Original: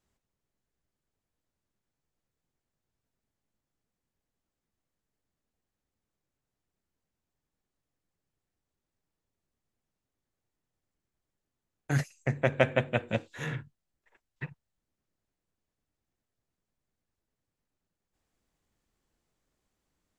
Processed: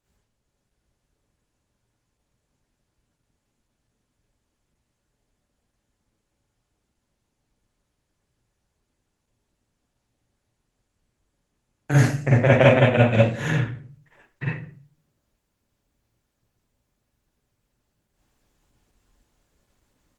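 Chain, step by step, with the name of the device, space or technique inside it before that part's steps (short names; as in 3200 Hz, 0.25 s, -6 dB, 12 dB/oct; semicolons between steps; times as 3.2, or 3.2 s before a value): speakerphone in a meeting room (reverb RT60 0.45 s, pre-delay 38 ms, DRR -6.5 dB; AGC gain up to 3.5 dB; gain +2 dB; Opus 16 kbps 48000 Hz)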